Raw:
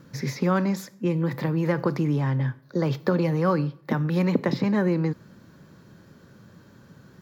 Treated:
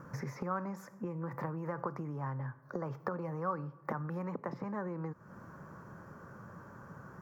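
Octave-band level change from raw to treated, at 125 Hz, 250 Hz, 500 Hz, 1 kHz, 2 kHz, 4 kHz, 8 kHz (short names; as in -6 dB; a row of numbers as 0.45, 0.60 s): -15.0 dB, -16.5 dB, -14.0 dB, -7.5 dB, -13.0 dB, under -20 dB, n/a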